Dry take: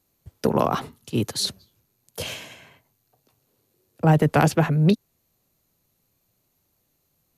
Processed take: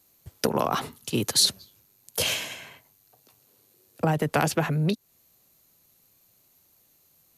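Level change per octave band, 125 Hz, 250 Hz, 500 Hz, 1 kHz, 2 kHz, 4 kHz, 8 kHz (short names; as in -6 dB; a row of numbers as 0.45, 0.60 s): -7.0, -6.0, -4.0, -3.5, -0.5, +5.0, +6.5 dB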